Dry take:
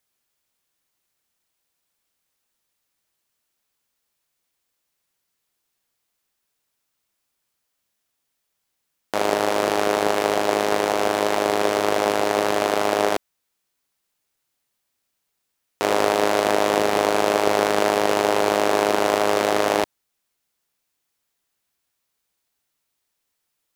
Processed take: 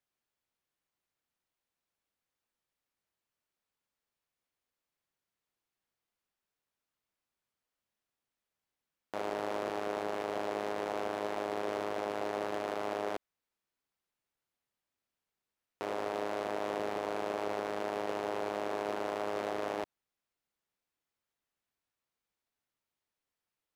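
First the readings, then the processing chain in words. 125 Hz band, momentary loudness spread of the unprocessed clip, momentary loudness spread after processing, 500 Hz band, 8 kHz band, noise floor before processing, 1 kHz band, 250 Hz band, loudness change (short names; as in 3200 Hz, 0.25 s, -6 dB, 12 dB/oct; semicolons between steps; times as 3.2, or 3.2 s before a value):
-15.0 dB, 3 LU, 2 LU, -15.0 dB, -23.5 dB, -77 dBFS, -15.5 dB, -15.0 dB, -15.5 dB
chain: high shelf 4000 Hz -11 dB; limiter -15.5 dBFS, peak gain reduction 11 dB; gain -8 dB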